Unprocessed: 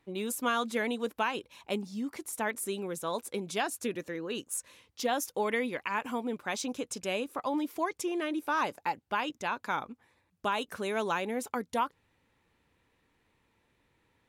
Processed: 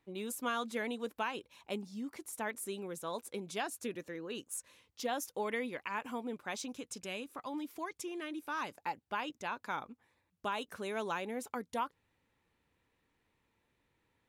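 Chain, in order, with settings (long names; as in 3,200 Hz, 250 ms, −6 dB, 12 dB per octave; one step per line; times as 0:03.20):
0:06.64–0:08.78: dynamic equaliser 590 Hz, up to −6 dB, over −43 dBFS, Q 0.84
level −6 dB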